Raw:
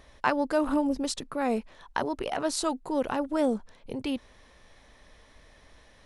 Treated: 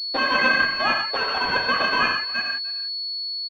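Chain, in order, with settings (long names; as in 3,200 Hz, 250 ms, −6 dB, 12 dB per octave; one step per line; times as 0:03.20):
converter with a step at zero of −28.5 dBFS
noise gate −26 dBFS, range −56 dB
low-shelf EQ 360 Hz +5.5 dB
brickwall limiter −16.5 dBFS, peak gain reduction 8.5 dB
ring modulation 1,200 Hz
elliptic high-pass filter 150 Hz
reverb whose tail is shaped and stops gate 330 ms flat, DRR 0 dB
wrong playback speed 45 rpm record played at 78 rpm
far-end echo of a speakerphone 300 ms, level −18 dB
switching amplifier with a slow clock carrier 4,400 Hz
level +8.5 dB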